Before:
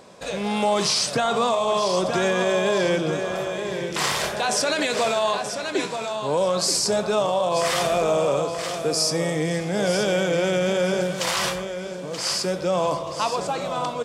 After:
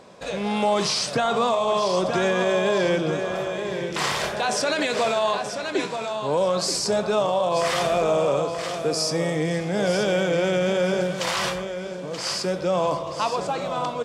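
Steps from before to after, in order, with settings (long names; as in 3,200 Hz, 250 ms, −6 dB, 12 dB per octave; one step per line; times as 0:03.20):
high-shelf EQ 7,100 Hz −8.5 dB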